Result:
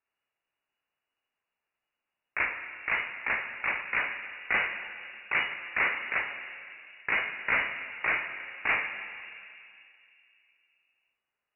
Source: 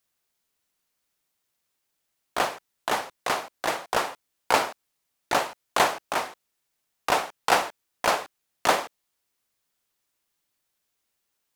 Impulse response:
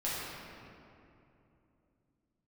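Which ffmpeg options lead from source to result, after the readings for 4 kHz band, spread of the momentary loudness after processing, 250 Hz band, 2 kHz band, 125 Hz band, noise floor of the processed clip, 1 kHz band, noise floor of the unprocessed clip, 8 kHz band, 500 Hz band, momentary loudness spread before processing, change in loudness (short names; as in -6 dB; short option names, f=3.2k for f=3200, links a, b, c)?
-10.5 dB, 13 LU, -11.0 dB, +3.5 dB, -7.5 dB, under -85 dBFS, -11.5 dB, -79 dBFS, under -40 dB, -14.5 dB, 12 LU, -3.0 dB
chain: -filter_complex "[0:a]asoftclip=type=hard:threshold=-18.5dB,asplit=2[a][b];[1:a]atrim=start_sample=2205,lowshelf=f=130:g=10.5[c];[b][c]afir=irnorm=-1:irlink=0,volume=-11dB[d];[a][d]amix=inputs=2:normalize=0,lowpass=f=2.5k:t=q:w=0.5098,lowpass=f=2.5k:t=q:w=0.6013,lowpass=f=2.5k:t=q:w=0.9,lowpass=f=2.5k:t=q:w=2.563,afreqshift=-2900,volume=-4dB"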